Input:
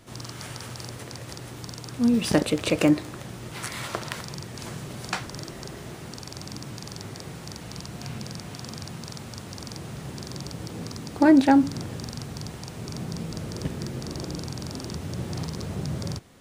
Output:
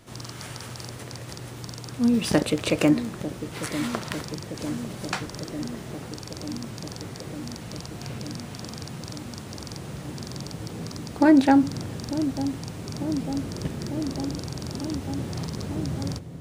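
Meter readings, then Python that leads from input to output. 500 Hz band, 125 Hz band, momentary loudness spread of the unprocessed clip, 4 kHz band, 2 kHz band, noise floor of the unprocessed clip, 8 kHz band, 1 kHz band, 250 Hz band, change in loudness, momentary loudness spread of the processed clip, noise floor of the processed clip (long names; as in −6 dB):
+0.5 dB, +0.5 dB, 16 LU, 0.0 dB, 0.0 dB, −41 dBFS, 0.0 dB, 0.0 dB, +1.0 dB, +0.5 dB, 15 LU, −40 dBFS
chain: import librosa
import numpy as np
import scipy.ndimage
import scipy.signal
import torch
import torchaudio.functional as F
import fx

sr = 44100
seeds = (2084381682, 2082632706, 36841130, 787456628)

y = fx.echo_wet_lowpass(x, sr, ms=898, feedback_pct=78, hz=570.0, wet_db=-10)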